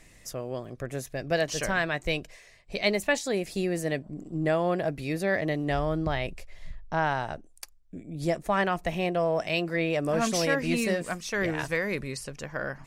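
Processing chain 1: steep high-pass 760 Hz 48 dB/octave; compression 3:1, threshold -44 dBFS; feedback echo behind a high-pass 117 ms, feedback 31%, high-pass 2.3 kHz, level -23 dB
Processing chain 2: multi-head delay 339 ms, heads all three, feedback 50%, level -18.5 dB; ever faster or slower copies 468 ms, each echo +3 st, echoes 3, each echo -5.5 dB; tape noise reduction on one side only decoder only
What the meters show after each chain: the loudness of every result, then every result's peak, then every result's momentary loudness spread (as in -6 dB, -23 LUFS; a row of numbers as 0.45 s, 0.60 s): -44.0 LUFS, -27.5 LUFS; -23.5 dBFS, -9.5 dBFS; 8 LU, 10 LU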